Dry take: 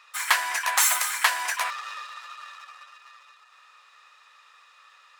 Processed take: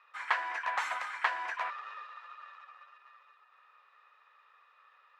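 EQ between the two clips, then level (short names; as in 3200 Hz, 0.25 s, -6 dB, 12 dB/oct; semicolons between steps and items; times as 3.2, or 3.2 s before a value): LPF 2000 Hz 12 dB/oct; low shelf 300 Hz +8.5 dB; -6.5 dB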